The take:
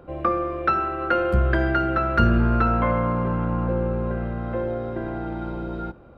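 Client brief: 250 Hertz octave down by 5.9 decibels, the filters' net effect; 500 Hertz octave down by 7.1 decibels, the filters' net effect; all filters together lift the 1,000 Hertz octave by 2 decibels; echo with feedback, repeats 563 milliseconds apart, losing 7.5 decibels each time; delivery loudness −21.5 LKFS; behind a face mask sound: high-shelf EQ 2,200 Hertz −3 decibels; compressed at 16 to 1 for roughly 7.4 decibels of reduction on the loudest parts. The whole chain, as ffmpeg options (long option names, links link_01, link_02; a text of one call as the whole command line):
ffmpeg -i in.wav -af "equalizer=frequency=250:width_type=o:gain=-5.5,equalizer=frequency=500:width_type=o:gain=-9,equalizer=frequency=1000:width_type=o:gain=6,acompressor=threshold=-21dB:ratio=16,highshelf=frequency=2200:gain=-3,aecho=1:1:563|1126|1689|2252|2815:0.422|0.177|0.0744|0.0312|0.0131,volume=6dB" out.wav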